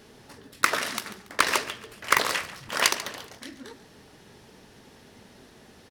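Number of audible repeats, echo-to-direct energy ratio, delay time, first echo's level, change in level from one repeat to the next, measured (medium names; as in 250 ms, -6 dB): 3, -15.0 dB, 141 ms, -15.5 dB, -9.0 dB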